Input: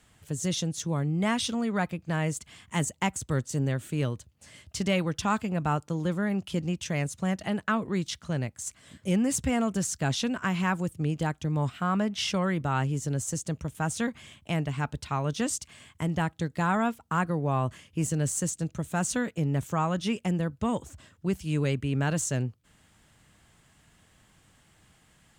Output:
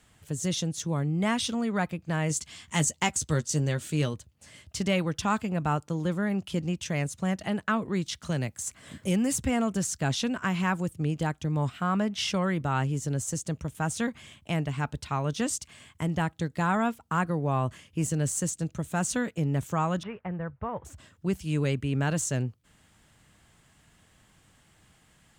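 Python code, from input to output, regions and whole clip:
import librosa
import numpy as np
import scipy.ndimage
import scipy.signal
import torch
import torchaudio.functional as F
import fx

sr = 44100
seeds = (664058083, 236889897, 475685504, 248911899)

y = fx.chain(x, sr, fx.peak_eq(hz=5300.0, db=8.5, octaves=1.6),
    fx.doubler(ms=13.0, db=-9.0), at=(2.29, 4.14))
y = fx.chain(y, sr, fx.high_shelf(hz=9900.0, db=5.5),
    fx.band_squash(depth_pct=40), at=(8.22, 9.45))
y = fx.chain(y, sr, fx.cvsd(bps=64000),
    fx.lowpass(hz=1900.0, slope=24),
    fx.peak_eq(hz=260.0, db=-14.5, octaves=1.0), at=(20.03, 20.85))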